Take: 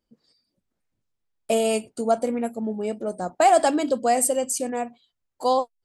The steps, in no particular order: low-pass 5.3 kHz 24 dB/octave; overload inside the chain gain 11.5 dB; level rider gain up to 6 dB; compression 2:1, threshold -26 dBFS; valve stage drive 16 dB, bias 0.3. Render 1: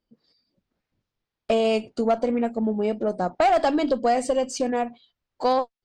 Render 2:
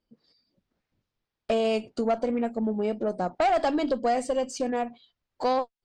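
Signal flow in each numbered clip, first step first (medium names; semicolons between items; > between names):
low-pass > overload inside the chain > compression > valve stage > level rider; overload inside the chain > level rider > compression > low-pass > valve stage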